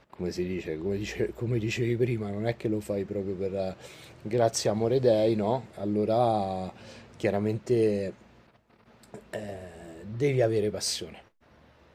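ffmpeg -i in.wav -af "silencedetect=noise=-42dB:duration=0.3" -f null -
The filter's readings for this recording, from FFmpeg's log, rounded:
silence_start: 8.13
silence_end: 9.03 | silence_duration: 0.90
silence_start: 11.20
silence_end: 11.94 | silence_duration: 0.74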